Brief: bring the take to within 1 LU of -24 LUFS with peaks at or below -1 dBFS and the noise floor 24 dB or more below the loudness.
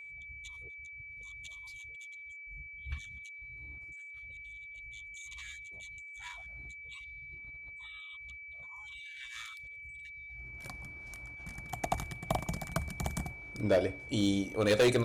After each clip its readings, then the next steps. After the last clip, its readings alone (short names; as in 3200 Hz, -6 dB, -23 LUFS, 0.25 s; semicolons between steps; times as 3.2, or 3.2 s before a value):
clipped 0.2%; flat tops at -20.5 dBFS; steady tone 2300 Hz; tone level -45 dBFS; loudness -38.5 LUFS; peak -20.5 dBFS; loudness target -24.0 LUFS
-> clip repair -20.5 dBFS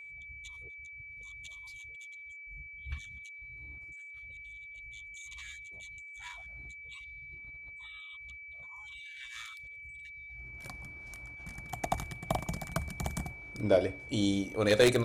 clipped 0.0%; steady tone 2300 Hz; tone level -45 dBFS
-> notch 2300 Hz, Q 30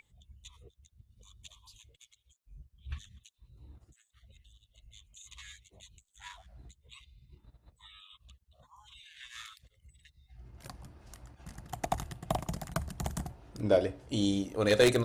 steady tone none; loudness -33.0 LUFS; peak -11.0 dBFS; loudness target -24.0 LUFS
-> gain +9 dB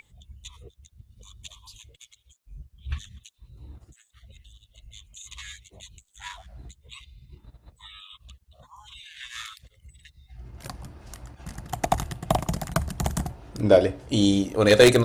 loudness -24.0 LUFS; peak -2.0 dBFS; noise floor -67 dBFS